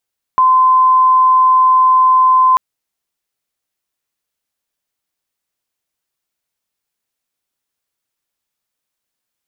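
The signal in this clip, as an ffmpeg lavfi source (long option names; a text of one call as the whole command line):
ffmpeg -f lavfi -i "sine=frequency=1030:duration=2.19:sample_rate=44100,volume=11.56dB" out.wav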